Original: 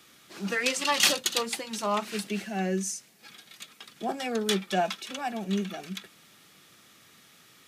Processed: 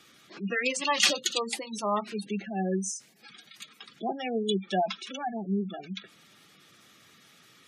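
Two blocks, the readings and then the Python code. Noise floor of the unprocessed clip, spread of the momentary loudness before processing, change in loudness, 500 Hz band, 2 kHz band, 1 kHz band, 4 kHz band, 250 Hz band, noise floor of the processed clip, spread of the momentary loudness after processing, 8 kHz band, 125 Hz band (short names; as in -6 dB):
-58 dBFS, 20 LU, -1.0 dB, -0.5 dB, -1.5 dB, -0.5 dB, -1.5 dB, 0.0 dB, -59 dBFS, 18 LU, -2.5 dB, 0.0 dB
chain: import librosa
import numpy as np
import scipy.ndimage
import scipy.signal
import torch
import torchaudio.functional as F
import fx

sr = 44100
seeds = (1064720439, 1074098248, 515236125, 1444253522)

y = fx.spec_gate(x, sr, threshold_db=-15, keep='strong')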